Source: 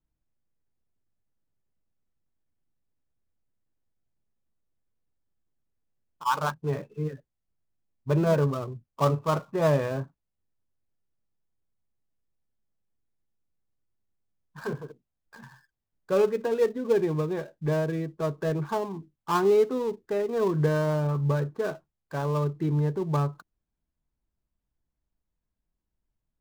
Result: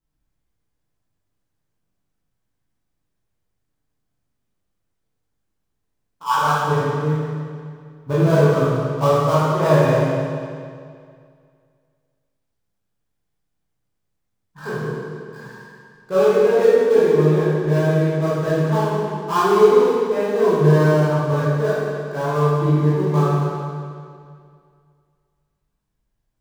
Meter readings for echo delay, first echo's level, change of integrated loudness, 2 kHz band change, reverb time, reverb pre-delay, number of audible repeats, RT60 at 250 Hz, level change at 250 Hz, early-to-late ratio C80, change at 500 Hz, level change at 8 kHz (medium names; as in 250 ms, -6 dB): no echo, no echo, +9.5 dB, +10.5 dB, 2.2 s, 16 ms, no echo, 2.2 s, +9.0 dB, -1.5 dB, +10.0 dB, no reading